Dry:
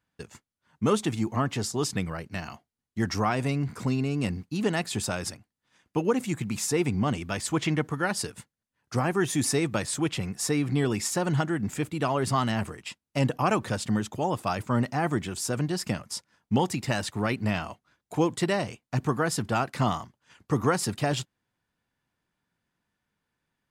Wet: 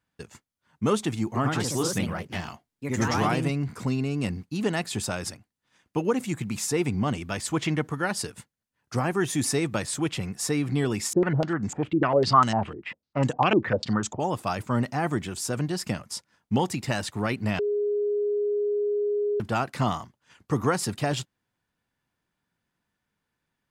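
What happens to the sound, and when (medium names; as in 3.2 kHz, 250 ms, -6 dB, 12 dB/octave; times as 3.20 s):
1.25–3.66 s: ever faster or slower copies 104 ms, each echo +2 st, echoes 2
11.13–14.20 s: step-sequenced low-pass 10 Hz 350–7000 Hz
17.59–19.40 s: bleep 413 Hz -22.5 dBFS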